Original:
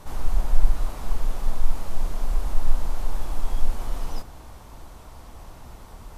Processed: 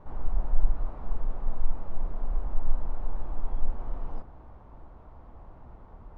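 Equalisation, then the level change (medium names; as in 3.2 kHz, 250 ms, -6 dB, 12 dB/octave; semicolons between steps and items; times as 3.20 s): low-pass 1.2 kHz 12 dB/octave; -5.0 dB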